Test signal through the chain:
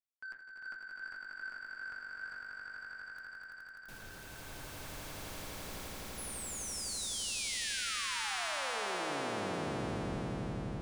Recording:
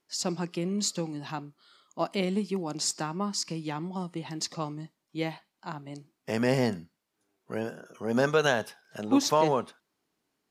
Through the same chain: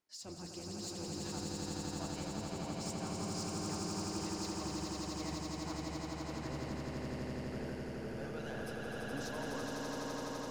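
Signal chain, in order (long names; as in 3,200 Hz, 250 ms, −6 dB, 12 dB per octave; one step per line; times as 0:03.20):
sub-octave generator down 1 octave, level −5 dB
hum removal 82.34 Hz, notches 28
reversed playback
downward compressor 6 to 1, threshold −34 dBFS
reversed playback
flanger 1.6 Hz, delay 1 ms, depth 8.2 ms, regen −59%
soft clipping −35 dBFS
echo that builds up and dies away 84 ms, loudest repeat 8, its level −3.5 dB
level −4 dB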